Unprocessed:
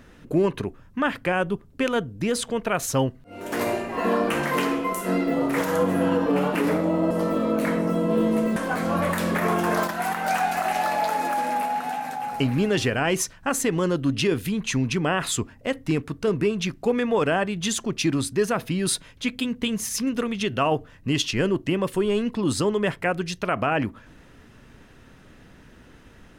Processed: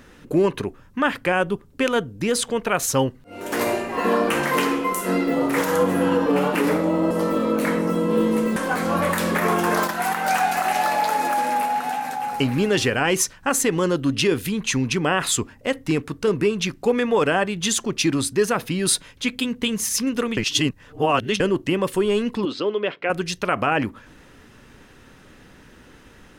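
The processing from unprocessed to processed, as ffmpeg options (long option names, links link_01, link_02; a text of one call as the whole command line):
ffmpeg -i in.wav -filter_complex "[0:a]asettb=1/sr,asplit=3[link_01][link_02][link_03];[link_01]atrim=end=22.454[link_04];[link_02]atrim=start=22.45:end=23.1,asetpts=PTS-STARTPTS,afade=type=in:duration=0.004:curve=qsin,afade=type=out:start_time=0.646:duration=0.004:curve=qsin,highpass=350,equalizer=frequency=880:width_type=q:width=4:gain=-9,equalizer=frequency=1200:width_type=q:width=4:gain=-3,equalizer=frequency=1800:width_type=q:width=4:gain=-8,lowpass=frequency=3800:width=0.5412,lowpass=frequency=3800:width=1.3066[link_05];[link_03]atrim=start=23.096[link_06];[link_04][link_05]acrossfade=duration=0.004:curve1=hsin:curve2=qsin[link_07];[link_07][link_06]acrossfade=duration=0.004:curve1=qsin:curve2=hsin,asplit=3[link_08][link_09][link_10];[link_08]atrim=end=20.372[link_11];[link_09]atrim=start=20.368:end=21.402,asetpts=PTS-STARTPTS,areverse[link_12];[link_10]atrim=start=21.398[link_13];[link_11][link_12]acrossfade=duration=0.004:curve1=hsin:curve2=hsin[link_14];[link_14][link_13]acrossfade=duration=0.004:curve1=hsin:curve2=hsin,bass=frequency=250:gain=-4,treble=frequency=4000:gain=2,bandreject=frequency=660:width=12,volume=3.5dB" out.wav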